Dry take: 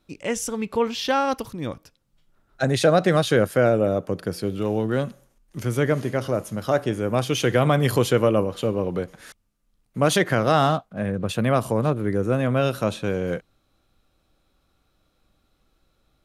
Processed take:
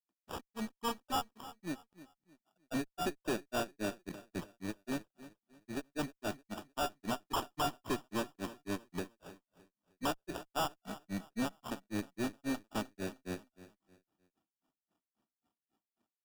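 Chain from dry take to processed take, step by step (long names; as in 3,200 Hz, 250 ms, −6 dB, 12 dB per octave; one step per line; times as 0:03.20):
spectral envelope exaggerated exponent 1.5
high-pass filter 220 Hz 24 dB per octave
in parallel at −8 dB: bit reduction 6 bits
on the sum: phaser with its sweep stopped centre 1,900 Hz, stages 6
tuned comb filter 720 Hz, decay 0.3 s, mix 70%
granular cloud 147 ms, grains 3.7 per second, pitch spread up and down by 0 semitones
decimation without filtering 21×
tube saturation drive 41 dB, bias 0.65
on a send: repeating echo 308 ms, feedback 32%, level −16 dB
on the sum: level +11.5 dB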